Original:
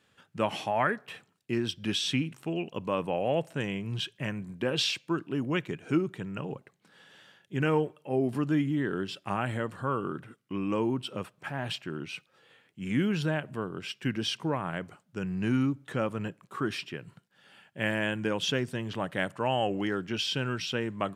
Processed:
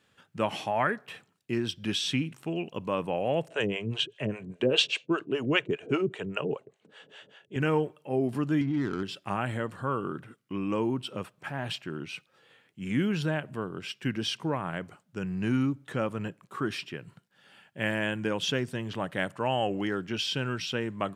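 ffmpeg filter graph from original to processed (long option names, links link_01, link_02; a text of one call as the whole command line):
ffmpeg -i in.wav -filter_complex "[0:a]asettb=1/sr,asplit=3[link_01][link_02][link_03];[link_01]atrim=end=3.484[link_04];[link_02]atrim=start=3.48:end=7.56,asetpts=PTS-STARTPTS,afade=type=in:duration=0.004:curve=qsin,afade=type=out:start_time=4.076:duration=0.004:curve=qsin,acontrast=61,highpass=100,equalizer=frequency=180:width_type=q:width=4:gain=-4,equalizer=frequency=430:width_type=q:width=4:gain=9,equalizer=frequency=630:width_type=q:width=4:gain=6,equalizer=frequency=2800:width_type=q:width=4:gain=6,equalizer=frequency=5100:width_type=q:width=4:gain=-7,lowpass=frequency=8600:width=0.5412,lowpass=frequency=8600:width=1.3066,acrossover=split=490[link_05][link_06];[link_05]aeval=exprs='val(0)*(1-1/2+1/2*cos(2*PI*5*n/s))':channel_layout=same[link_07];[link_06]aeval=exprs='val(0)*(1-1/2-1/2*cos(2*PI*5*n/s))':channel_layout=same[link_08];[link_07][link_08]amix=inputs=2:normalize=0[link_09];[link_03]atrim=start=7.556[link_10];[link_04][link_09]acrossfade=duration=0.004:curve1=hsin:curve2=qsin[link_11];[link_11][link_10]acrossfade=duration=0.004:curve1=qsin:curve2=hsin,asettb=1/sr,asplit=3[link_12][link_13][link_14];[link_12]atrim=end=8.614[link_15];[link_13]atrim=start=8.61:end=9.03,asetpts=PTS-STARTPTS,afade=type=in:duration=0.004:curve=qsin,afade=type=out:start_time=0.416:duration=0.004:curve=qsin,equalizer=frequency=160:width=5.3:gain=-8.5,aecho=1:1:0.9:0.6,atrim=end_sample=18522,adynamicsmooth=sensitivity=7:basefreq=750[link_16];[link_14]atrim=start=9.026[link_17];[link_15][link_16]acrossfade=duration=0.004:curve1=hsin:curve2=qsin[link_18];[link_18][link_17]acrossfade=duration=0.004:curve1=qsin:curve2=hsin" out.wav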